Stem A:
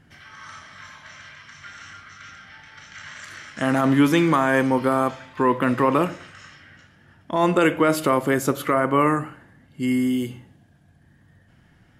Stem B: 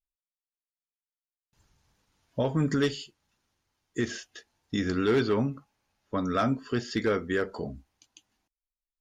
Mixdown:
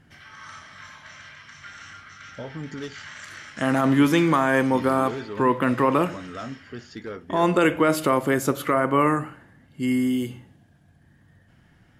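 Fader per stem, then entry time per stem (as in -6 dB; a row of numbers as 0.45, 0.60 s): -1.0, -9.0 dB; 0.00, 0.00 s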